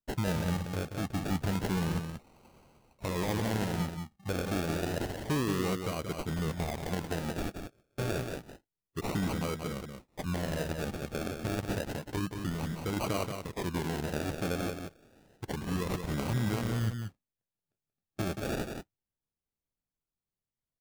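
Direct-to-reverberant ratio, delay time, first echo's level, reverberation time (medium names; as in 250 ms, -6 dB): no reverb, 180 ms, -6.5 dB, no reverb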